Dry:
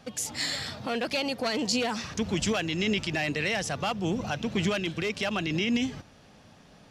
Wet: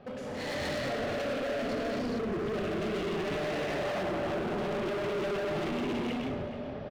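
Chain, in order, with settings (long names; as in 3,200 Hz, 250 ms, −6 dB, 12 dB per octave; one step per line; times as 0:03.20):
downward compressor 2 to 1, threshold −31 dBFS, peak gain reduction 5 dB
high-frequency loss of the air 380 metres
hollow resonant body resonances 400/580 Hz, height 14 dB, ringing for 45 ms
0:01.74–0:02.45: gain on a spectral selection 490–8,400 Hz −11 dB
reverb whose tail is shaped and stops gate 490 ms flat, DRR −6.5 dB
brickwall limiter −21.5 dBFS, peak gain reduction 12.5 dB
hard clipping −34.5 dBFS, distortion −7 dB
0:00.69–0:03.08: parametric band 900 Hz −9.5 dB 0.24 octaves
slap from a distant wall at 73 metres, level −10 dB
automatic gain control gain up to 5 dB
level −1.5 dB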